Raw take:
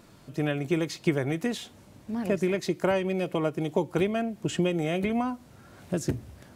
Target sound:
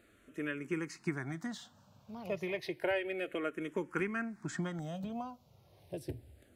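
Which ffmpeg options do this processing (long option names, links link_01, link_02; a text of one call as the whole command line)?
ffmpeg -i in.wav -filter_complex "[0:a]asetnsamples=nb_out_samples=441:pad=0,asendcmd='2.32 equalizer g 12.5;4.79 equalizer g -3.5',equalizer=frequency=1600:width_type=o:width=1.4:gain=6.5,asplit=2[link_01][link_02];[link_02]afreqshift=-0.31[link_03];[link_01][link_03]amix=inputs=2:normalize=1,volume=-9dB" out.wav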